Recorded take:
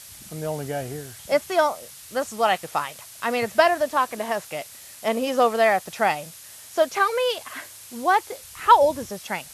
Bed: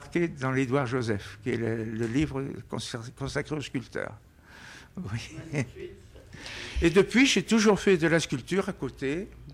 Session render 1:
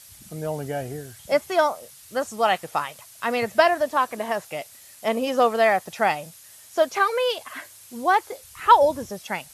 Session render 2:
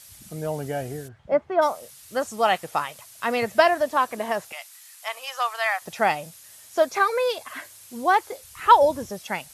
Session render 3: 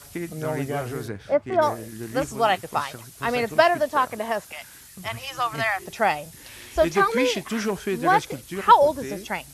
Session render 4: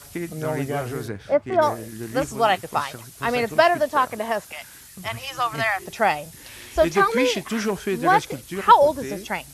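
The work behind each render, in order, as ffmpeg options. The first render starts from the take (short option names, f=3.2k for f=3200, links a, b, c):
-af "afftdn=nr=6:nf=-44"
-filter_complex "[0:a]asplit=3[a][b][c];[a]afade=t=out:st=1.07:d=0.02[d];[b]lowpass=1.3k,afade=t=in:st=1.07:d=0.02,afade=t=out:st=1.61:d=0.02[e];[c]afade=t=in:st=1.61:d=0.02[f];[d][e][f]amix=inputs=3:normalize=0,asettb=1/sr,asplit=3[g][h][i];[g]atrim=end=4.524[j];[h]atrim=start=4.52:end=5.82,asetpts=PTS-STARTPTS,afade=t=in:d=0.004:c=qsin,afade=t=out:st=1.296:d=0.004:c=qsin,highpass=f=920:w=0.5412,highpass=f=920:w=1.3066[k];[i]atrim=start=5.816[l];[j][k]acrossfade=d=0.004:c1=hsin:c2=qsin[m];[m][l]acrossfade=d=0.004:c1=qsin:c2=hsin,asettb=1/sr,asplit=3[n][o][p];[n]atrim=end=6.804[q];[o]atrim=start=6.8:end=7.46,asetpts=PTS-STARTPTS,afade=t=in:d=0.004:c=qsin,afade=t=out:st=0.656:d=0.004:c=qsin,bandreject=f=3k:w=6.2[r];[p]atrim=start=7.456[s];[q][r]acrossfade=d=0.004:c1=hsin:c2=qsin[t];[t][s]acrossfade=d=0.004:c1=qsin:c2=hsin"
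-filter_complex "[1:a]volume=-5dB[a];[0:a][a]amix=inputs=2:normalize=0"
-af "volume=1.5dB,alimiter=limit=-3dB:level=0:latency=1"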